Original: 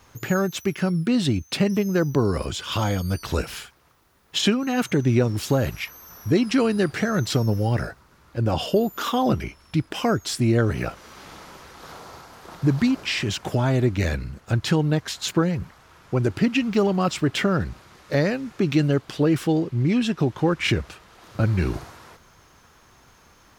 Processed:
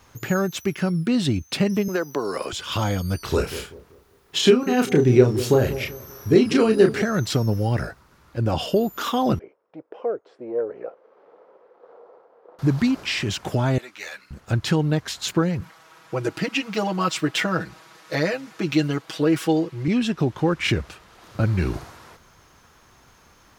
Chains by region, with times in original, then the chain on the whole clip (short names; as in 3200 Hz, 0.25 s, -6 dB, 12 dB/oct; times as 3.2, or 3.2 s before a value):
1.88–2.53 HPF 430 Hz + three-band squash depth 100%
3.23–7.02 bell 400 Hz +11 dB 0.24 oct + doubler 32 ms -5.5 dB + analogue delay 0.193 s, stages 1024, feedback 35%, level -13 dB
9.39–12.59 sample leveller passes 1 + ladder band-pass 520 Hz, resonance 70%
13.78–14.31 HPF 1000 Hz + ensemble effect
15.61–19.88 HPF 430 Hz 6 dB/oct + comb 6.2 ms, depth 93%
whole clip: dry